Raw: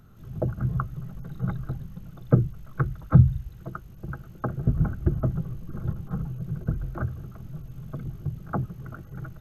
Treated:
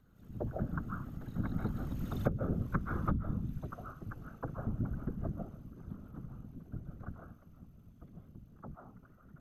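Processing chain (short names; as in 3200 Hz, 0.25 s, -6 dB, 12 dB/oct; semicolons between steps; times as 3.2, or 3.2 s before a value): Doppler pass-by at 2.33, 9 m/s, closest 1.9 m; reverb RT60 0.45 s, pre-delay 0.105 s, DRR 2.5 dB; compressor 12:1, threshold -38 dBFS, peak gain reduction 26 dB; whisperiser; gain +9 dB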